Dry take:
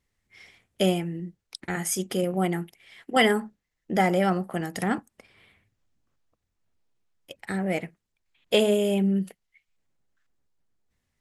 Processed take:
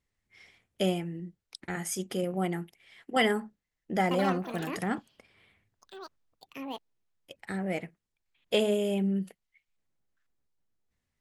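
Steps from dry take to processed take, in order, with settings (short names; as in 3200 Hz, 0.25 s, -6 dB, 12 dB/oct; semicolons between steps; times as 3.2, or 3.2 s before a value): high shelf 11000 Hz -5 dB; 4.03–7.81 echoes that change speed 80 ms, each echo +6 st, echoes 2, each echo -6 dB; gain -5 dB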